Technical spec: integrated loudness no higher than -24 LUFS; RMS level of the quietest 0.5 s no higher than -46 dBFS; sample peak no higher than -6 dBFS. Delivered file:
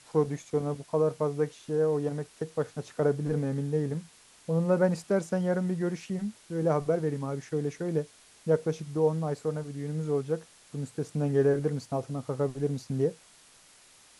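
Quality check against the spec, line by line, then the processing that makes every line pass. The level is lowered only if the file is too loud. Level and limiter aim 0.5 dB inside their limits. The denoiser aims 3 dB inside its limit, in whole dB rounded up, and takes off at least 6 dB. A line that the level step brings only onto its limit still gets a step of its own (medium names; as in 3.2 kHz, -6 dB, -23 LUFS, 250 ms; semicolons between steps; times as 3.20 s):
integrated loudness -30.0 LUFS: pass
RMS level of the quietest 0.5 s -57 dBFS: pass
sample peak -12.5 dBFS: pass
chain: none needed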